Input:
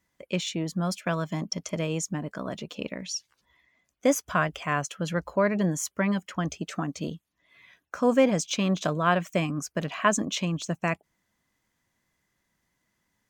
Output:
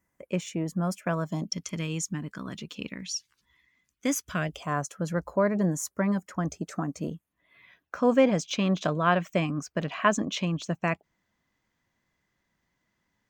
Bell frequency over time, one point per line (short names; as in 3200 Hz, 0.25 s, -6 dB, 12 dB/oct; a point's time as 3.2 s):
bell -14.5 dB 0.96 oct
1.2 s 3900 Hz
1.6 s 630 Hz
4.23 s 630 Hz
4.79 s 3000 Hz
6.86 s 3000 Hz
8.05 s 11000 Hz